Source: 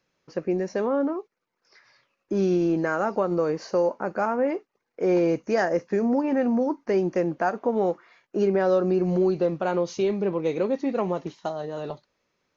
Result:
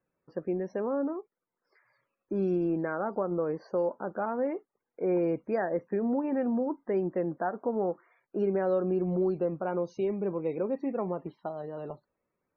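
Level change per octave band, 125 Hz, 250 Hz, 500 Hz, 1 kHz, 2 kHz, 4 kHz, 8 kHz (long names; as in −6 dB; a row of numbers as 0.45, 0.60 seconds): −5.5 dB, −5.5 dB, −6.0 dB, −7.0 dB, −9.5 dB, below −15 dB, can't be measured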